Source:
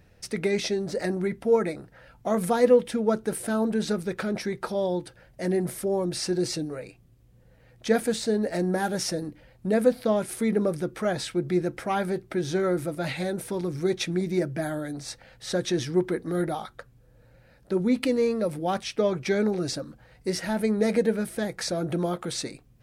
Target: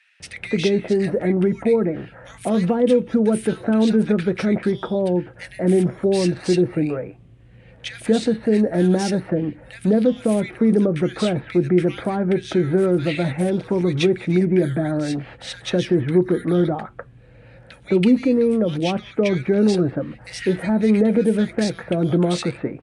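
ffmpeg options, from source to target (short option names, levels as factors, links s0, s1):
-filter_complex "[0:a]highshelf=f=3800:t=q:w=1.5:g=-10,asplit=2[s0][s1];[s1]alimiter=limit=0.106:level=0:latency=1:release=93,volume=1.19[s2];[s0][s2]amix=inputs=2:normalize=0,highpass=53,acrossover=split=430|3200[s3][s4][s5];[s4]acompressor=threshold=0.0282:ratio=6[s6];[s3][s6][s5]amix=inputs=3:normalize=0,acrossover=split=1700[s7][s8];[s7]adelay=200[s9];[s9][s8]amix=inputs=2:normalize=0,aresample=22050,aresample=44100,volume=1.58"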